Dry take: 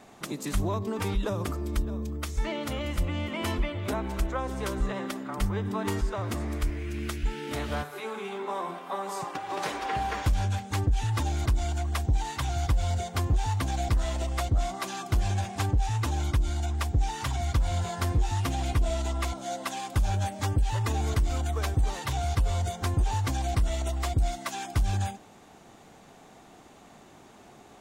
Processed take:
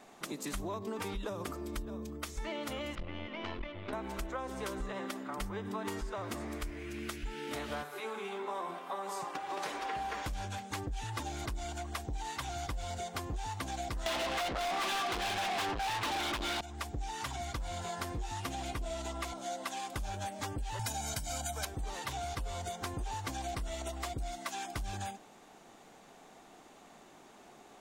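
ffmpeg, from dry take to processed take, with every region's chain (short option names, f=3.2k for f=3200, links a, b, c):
-filter_complex "[0:a]asettb=1/sr,asplit=3[a][b][c];[a]atrim=end=2.954[d];[b]atrim=start=2.95:end=3.93,asetpts=PTS-STARTPTS,afade=t=in:d=0.004:c=qsin,afade=t=out:st=0.976:d=0.004:c=qsin,lowpass=f=4.1k:w=0.5412,lowpass=f=4.1k:w=1.3066,equalizer=f=92:t=o:w=0.21:g=7,aeval=exprs='(tanh(8.91*val(0)+0.8)-tanh(0.8))/8.91':c=same[e];[c]atrim=start=3.926[f];[d][e]acrossfade=d=0.004:c1=hsin:c2=qsin[g];[g][f]acrossfade=d=0.004:c1=qsin:c2=hsin,asettb=1/sr,asplit=3[h][i][j];[h]atrim=end=14.064[k];[i]atrim=start=14.06:end=16.61,asetpts=PTS-STARTPTS,afade=t=in:d=0.004:c=qsin,afade=t=out:st=2.546:d=0.004:c=qsin,highshelf=f=5.1k:t=q:w=1.5:g=-12.5,asplit=2[l][m];[m]highpass=f=720:p=1,volume=38dB,asoftclip=type=tanh:threshold=-13dB[n];[l][n]amix=inputs=2:normalize=0,lowpass=f=7.6k:p=1,volume=-6dB[o];[j]atrim=start=16.606[p];[k][o]acrossfade=d=0.004:c1=hsin:c2=qsin[q];[q][p]acrossfade=d=0.004:c1=qsin:c2=hsin,asettb=1/sr,asplit=3[r][s][t];[r]atrim=end=20.794[u];[s]atrim=start=20.79:end=21.65,asetpts=PTS-STARTPTS,afade=t=in:d=0.004:c=qsin,afade=t=out:st=0.856:d=0.004:c=qsin,highpass=82,bass=f=250:g=2,treble=f=4k:g=11,aecho=1:1:1.3:0.93,atrim=end_sample=37926[v];[t]atrim=start=21.646[w];[u][v]acrossfade=d=0.004:c1=hsin:c2=qsin[x];[x][w]acrossfade=d=0.004:c1=qsin:c2=hsin,equalizer=f=85:w=0.72:g=-11.5,acompressor=threshold=-31dB:ratio=6,volume=-3dB"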